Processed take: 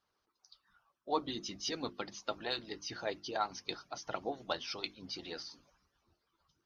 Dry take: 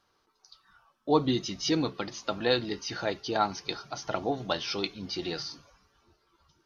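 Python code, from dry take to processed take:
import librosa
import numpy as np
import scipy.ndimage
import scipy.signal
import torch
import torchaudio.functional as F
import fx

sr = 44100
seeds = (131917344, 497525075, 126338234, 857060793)

y = fx.hpss(x, sr, part='harmonic', gain_db=-16)
y = fx.cheby_harmonics(y, sr, harmonics=(6,), levels_db=(-43,), full_scale_db=-12.5)
y = fx.hum_notches(y, sr, base_hz=50, count=7)
y = F.gain(torch.from_numpy(y), -5.5).numpy()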